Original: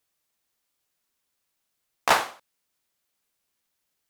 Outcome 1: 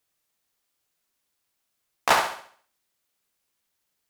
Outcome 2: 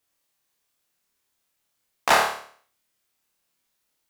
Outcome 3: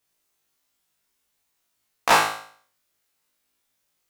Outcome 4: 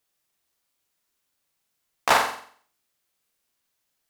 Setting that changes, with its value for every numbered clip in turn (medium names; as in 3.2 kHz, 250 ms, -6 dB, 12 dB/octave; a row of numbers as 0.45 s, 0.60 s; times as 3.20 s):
flutter echo, walls apart: 11.8 m, 4.7 m, 3.2 m, 7.8 m